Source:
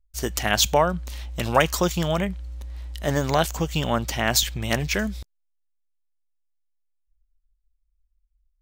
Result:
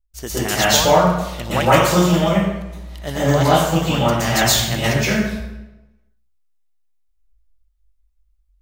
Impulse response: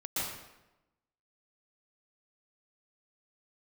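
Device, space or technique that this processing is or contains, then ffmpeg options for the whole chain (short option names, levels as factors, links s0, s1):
bathroom: -filter_complex "[1:a]atrim=start_sample=2205[s0];[0:a][s0]afir=irnorm=-1:irlink=0,volume=1.19"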